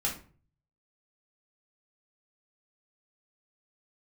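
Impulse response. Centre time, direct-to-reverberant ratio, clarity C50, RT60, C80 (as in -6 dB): 24 ms, -4.5 dB, 8.5 dB, 0.45 s, 14.5 dB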